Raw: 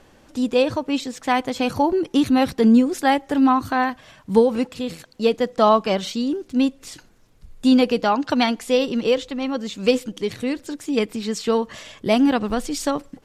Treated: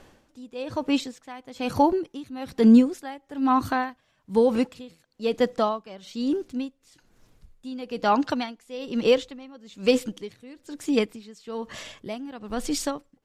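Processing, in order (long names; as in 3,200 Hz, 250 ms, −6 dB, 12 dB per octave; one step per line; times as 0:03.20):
tremolo with a sine in dB 1.1 Hz, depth 21 dB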